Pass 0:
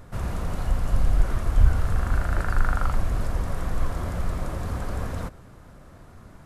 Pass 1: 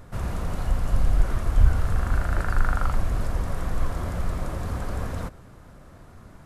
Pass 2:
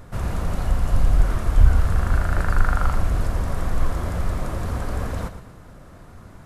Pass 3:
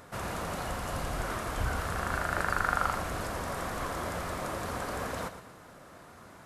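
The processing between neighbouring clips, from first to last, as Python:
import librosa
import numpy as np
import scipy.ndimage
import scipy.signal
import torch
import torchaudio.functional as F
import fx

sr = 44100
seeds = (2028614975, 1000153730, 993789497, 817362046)

y1 = x
y2 = fx.echo_feedback(y1, sr, ms=118, feedback_pct=41, wet_db=-12)
y2 = F.gain(torch.from_numpy(y2), 3.0).numpy()
y3 = fx.highpass(y2, sr, hz=500.0, slope=6)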